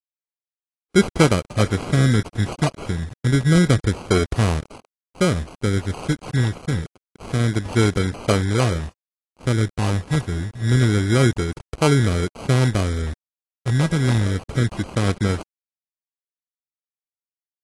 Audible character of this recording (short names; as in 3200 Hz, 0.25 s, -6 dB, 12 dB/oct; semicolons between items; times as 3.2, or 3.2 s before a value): a quantiser's noise floor 6-bit, dither none; phasing stages 6, 0.27 Hz, lowest notch 600–1800 Hz; aliases and images of a low sample rate 1800 Hz, jitter 0%; AAC